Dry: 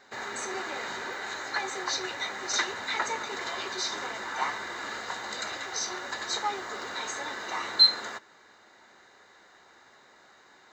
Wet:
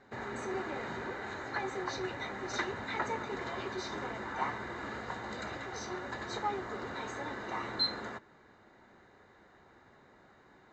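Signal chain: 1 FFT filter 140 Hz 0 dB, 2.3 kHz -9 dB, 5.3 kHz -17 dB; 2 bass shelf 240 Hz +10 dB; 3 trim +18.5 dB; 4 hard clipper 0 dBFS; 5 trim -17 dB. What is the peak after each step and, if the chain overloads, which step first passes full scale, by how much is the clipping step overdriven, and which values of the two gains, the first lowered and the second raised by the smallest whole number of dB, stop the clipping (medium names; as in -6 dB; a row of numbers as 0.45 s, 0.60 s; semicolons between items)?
-22.0 dBFS, -20.5 dBFS, -2.0 dBFS, -2.0 dBFS, -19.0 dBFS; nothing clips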